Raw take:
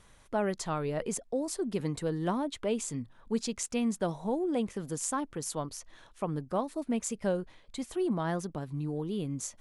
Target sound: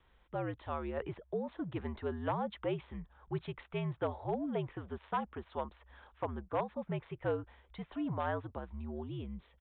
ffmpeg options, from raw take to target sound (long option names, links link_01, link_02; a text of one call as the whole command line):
ffmpeg -i in.wav -filter_complex "[0:a]acrossover=split=640|1900[link_01][link_02][link_03];[link_02]dynaudnorm=framelen=190:gausssize=9:maxgain=10dB[link_04];[link_01][link_04][link_03]amix=inputs=3:normalize=0,afreqshift=-73,asoftclip=type=hard:threshold=-17dB,aresample=8000,aresample=44100,volume=-8dB" out.wav